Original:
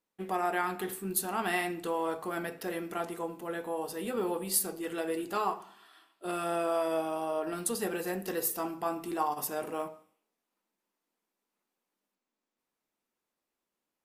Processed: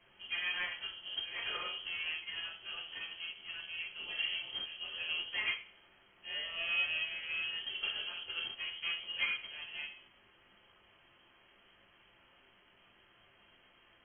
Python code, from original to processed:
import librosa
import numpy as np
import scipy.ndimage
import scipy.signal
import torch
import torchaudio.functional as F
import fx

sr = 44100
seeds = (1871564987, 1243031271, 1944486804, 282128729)

p1 = fx.octave_divider(x, sr, octaves=2, level_db=3.0)
p2 = fx.low_shelf(p1, sr, hz=150.0, db=-11.5)
p3 = fx.quant_dither(p2, sr, seeds[0], bits=6, dither='triangular')
p4 = p2 + (p3 * librosa.db_to_amplitude(-6.0))
p5 = fx.tube_stage(p4, sr, drive_db=24.0, bias=0.75)
p6 = fx.room_shoebox(p5, sr, seeds[1], volume_m3=46.0, walls='mixed', distance_m=0.92)
p7 = fx.freq_invert(p6, sr, carrier_hz=3200)
p8 = fx.upward_expand(p7, sr, threshold_db=-37.0, expansion=1.5)
y = p8 * librosa.db_to_amplitude(-8.5)